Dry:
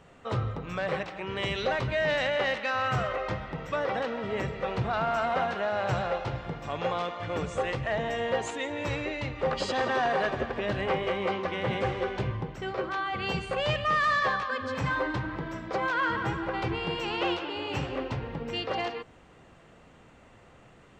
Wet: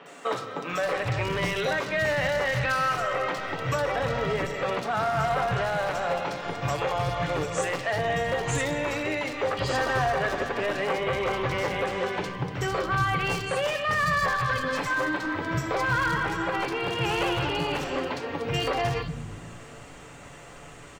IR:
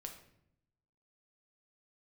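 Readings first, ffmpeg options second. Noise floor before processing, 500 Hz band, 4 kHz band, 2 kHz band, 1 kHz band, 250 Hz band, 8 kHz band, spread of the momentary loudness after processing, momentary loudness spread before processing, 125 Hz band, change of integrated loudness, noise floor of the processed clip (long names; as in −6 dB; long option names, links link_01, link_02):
−55 dBFS, +2.5 dB, +2.5 dB, +4.0 dB, +3.0 dB, +2.0 dB, +10.0 dB, 7 LU, 7 LU, +3.0 dB, +3.0 dB, −45 dBFS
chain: -filter_complex "[0:a]aemphasis=mode=reproduction:type=50kf,acrossover=split=2800[link_01][link_02];[link_02]acompressor=threshold=-53dB:ratio=4:attack=1:release=60[link_03];[link_01][link_03]amix=inputs=2:normalize=0,highshelf=frequency=5600:gain=10,aecho=1:1:7:0.36,acompressor=threshold=-33dB:ratio=4,crystalizer=i=3.5:c=0,aeval=exprs='0.0398*(abs(mod(val(0)/0.0398+3,4)-2)-1)':channel_layout=same,acrossover=split=210|3600[link_04][link_05][link_06];[link_06]adelay=60[link_07];[link_04]adelay=730[link_08];[link_08][link_05][link_07]amix=inputs=3:normalize=0,asplit=2[link_09][link_10];[1:a]atrim=start_sample=2205[link_11];[link_10][link_11]afir=irnorm=-1:irlink=0,volume=2dB[link_12];[link_09][link_12]amix=inputs=2:normalize=0,volume=4dB"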